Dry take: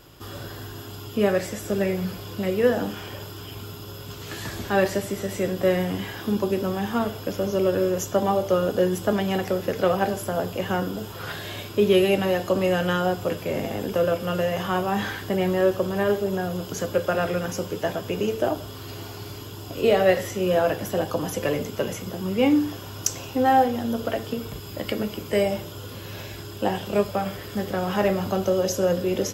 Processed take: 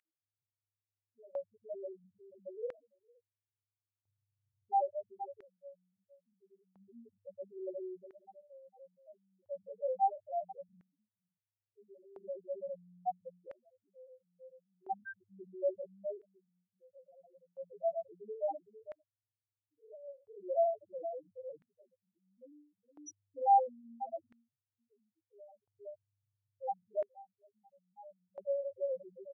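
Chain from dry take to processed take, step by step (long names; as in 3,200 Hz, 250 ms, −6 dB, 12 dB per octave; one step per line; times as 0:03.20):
0:12.18–0:13.11: high-pass filter 100 Hz 24 dB per octave
multi-voice chorus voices 2, 0.13 Hz, delay 22 ms, depth 1.1 ms
single-tap delay 458 ms −11.5 dB
spectral peaks only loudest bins 1
auto-filter high-pass square 0.37 Hz 800–1,900 Hz
level −3 dB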